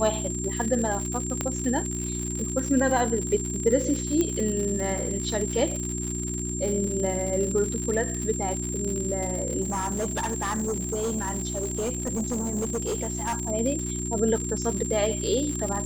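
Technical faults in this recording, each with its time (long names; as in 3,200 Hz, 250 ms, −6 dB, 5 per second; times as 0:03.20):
surface crackle 120 per second −29 dBFS
mains hum 60 Hz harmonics 6 −32 dBFS
whistle 7,400 Hz −32 dBFS
0:01.41: click −12 dBFS
0:04.21: click −12 dBFS
0:09.61–0:13.50: clipping −24 dBFS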